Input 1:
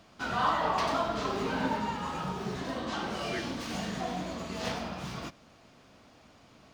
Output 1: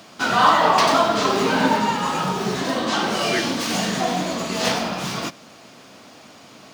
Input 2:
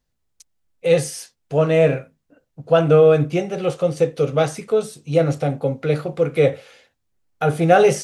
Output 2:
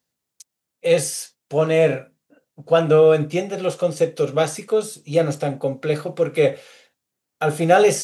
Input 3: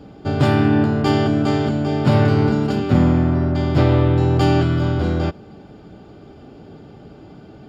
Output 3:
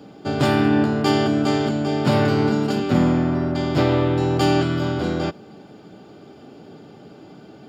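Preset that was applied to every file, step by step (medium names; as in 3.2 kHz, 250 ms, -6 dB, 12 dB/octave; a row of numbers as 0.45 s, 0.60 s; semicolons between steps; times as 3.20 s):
high-pass 160 Hz 12 dB/octave; treble shelf 4.6 kHz +7 dB; normalise loudness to -20 LUFS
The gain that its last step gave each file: +12.5 dB, -1.0 dB, -0.5 dB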